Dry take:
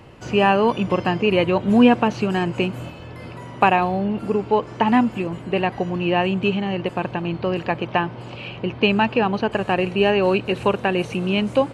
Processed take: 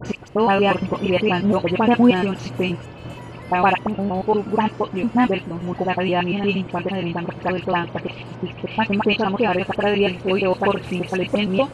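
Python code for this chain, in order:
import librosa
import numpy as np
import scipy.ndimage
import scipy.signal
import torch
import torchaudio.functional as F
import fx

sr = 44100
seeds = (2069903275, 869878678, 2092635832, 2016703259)

y = fx.block_reorder(x, sr, ms=117.0, group=3)
y = fx.dispersion(y, sr, late='highs', ms=56.0, hz=2100.0)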